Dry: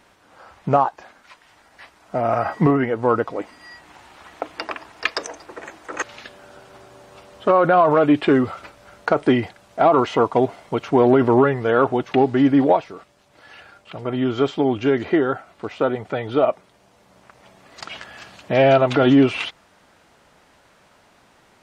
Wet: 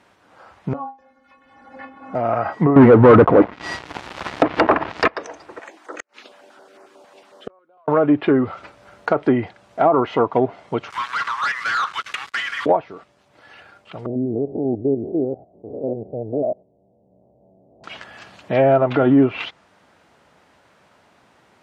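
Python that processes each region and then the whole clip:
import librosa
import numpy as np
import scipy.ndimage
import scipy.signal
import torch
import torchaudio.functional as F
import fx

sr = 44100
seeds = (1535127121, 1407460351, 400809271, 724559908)

y = fx.chain(x, sr, fx.tilt_eq(slope=-3.0),
    fx.stiff_resonator(f0_hz=260.0, decay_s=0.23, stiffness=0.008),
    fx.band_squash(depth_pct=100), at=(0.73, 2.15))
y = fx.chain(y, sr, fx.lowpass(hz=4700.0, slope=12),
    fx.low_shelf(hz=420.0, db=5.5),
    fx.leveller(passes=5), at=(2.76, 5.08))
y = fx.chain(y, sr, fx.highpass(hz=260.0, slope=24),
    fx.gate_flip(shuts_db=-14.0, range_db=-39),
    fx.filter_held_notch(hz=11.0, low_hz=360.0, high_hz=3400.0), at=(5.59, 7.88))
y = fx.chain(y, sr, fx.level_steps(step_db=10),
    fx.steep_highpass(hz=1100.0, slope=72),
    fx.leveller(passes=5), at=(10.9, 12.66))
y = fx.chain(y, sr, fx.spec_steps(hold_ms=100),
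    fx.steep_lowpass(hz=700.0, slope=48), at=(14.06, 17.84))
y = scipy.signal.sosfilt(scipy.signal.butter(2, 70.0, 'highpass', fs=sr, output='sos'), y)
y = fx.env_lowpass_down(y, sr, base_hz=1400.0, full_db=-11.0)
y = fx.high_shelf(y, sr, hz=4400.0, db=-6.5)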